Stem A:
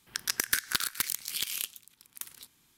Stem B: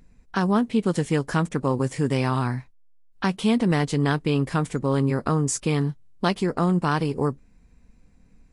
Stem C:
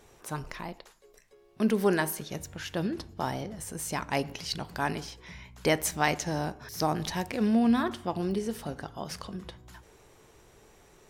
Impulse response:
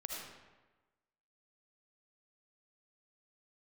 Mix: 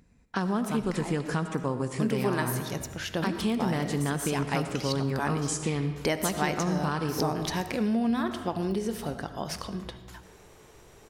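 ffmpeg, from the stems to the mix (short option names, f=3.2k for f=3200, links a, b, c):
-filter_complex "[0:a]adelay=2400,volume=-19dB[a];[1:a]highpass=54,volume=-5dB,asplit=3[b][c][d];[c]volume=-4dB[e];[2:a]adelay=400,volume=1.5dB,asplit=2[f][g];[g]volume=-7.5dB[h];[d]apad=whole_len=228201[i];[a][i]sidechaingate=range=-33dB:threshold=-52dB:ratio=16:detection=peak[j];[3:a]atrim=start_sample=2205[k];[e][h]amix=inputs=2:normalize=0[l];[l][k]afir=irnorm=-1:irlink=0[m];[j][b][f][m]amix=inputs=4:normalize=0,acompressor=threshold=-26dB:ratio=2.5"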